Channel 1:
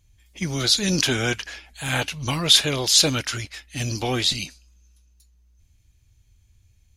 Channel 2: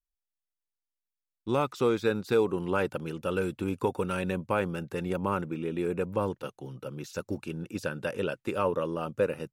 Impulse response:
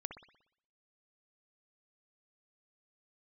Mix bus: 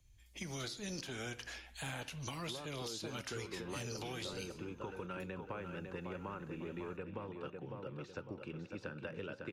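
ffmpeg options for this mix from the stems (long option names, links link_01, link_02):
-filter_complex "[0:a]acompressor=threshold=-26dB:ratio=6,alimiter=limit=-18.5dB:level=0:latency=1:release=281,volume=-4.5dB,asplit=3[link_01][link_02][link_03];[link_02]volume=-7dB[link_04];[1:a]lowpass=3100,acompressor=threshold=-29dB:ratio=6,adelay=1000,volume=-1dB,asplit=2[link_05][link_06];[link_06]volume=-7.5dB[link_07];[link_03]apad=whole_len=464110[link_08];[link_05][link_08]sidechaincompress=threshold=-34dB:ratio=8:attack=16:release=918[link_09];[2:a]atrim=start_sample=2205[link_10];[link_04][link_10]afir=irnorm=-1:irlink=0[link_11];[link_07]aecho=0:1:551|1102|1653|2204|2755:1|0.37|0.137|0.0507|0.0187[link_12];[link_01][link_09][link_11][link_12]amix=inputs=4:normalize=0,acrossover=split=130|370|1200|6500[link_13][link_14][link_15][link_16][link_17];[link_13]acompressor=threshold=-48dB:ratio=4[link_18];[link_14]acompressor=threshold=-45dB:ratio=4[link_19];[link_15]acompressor=threshold=-42dB:ratio=4[link_20];[link_16]acompressor=threshold=-42dB:ratio=4[link_21];[link_17]acompressor=threshold=-50dB:ratio=4[link_22];[link_18][link_19][link_20][link_21][link_22]amix=inputs=5:normalize=0,flanger=delay=5.5:depth=8:regen=-87:speed=0.39:shape=sinusoidal"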